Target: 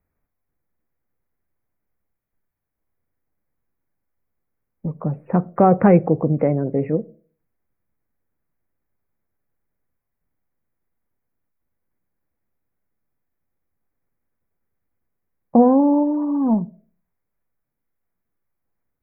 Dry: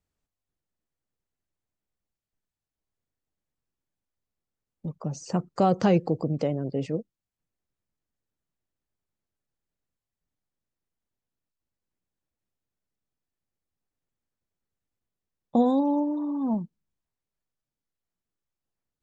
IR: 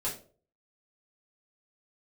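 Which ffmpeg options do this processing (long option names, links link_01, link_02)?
-filter_complex "[0:a]asuperstop=centerf=5400:order=20:qfactor=0.65,asplit=2[link_01][link_02];[1:a]atrim=start_sample=2205,lowpass=2000[link_03];[link_02][link_03]afir=irnorm=-1:irlink=0,volume=-19dB[link_04];[link_01][link_04]amix=inputs=2:normalize=0,volume=7.5dB"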